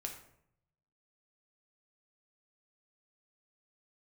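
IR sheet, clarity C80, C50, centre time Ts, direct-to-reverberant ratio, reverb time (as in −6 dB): 11.0 dB, 7.5 dB, 20 ms, 2.0 dB, 0.70 s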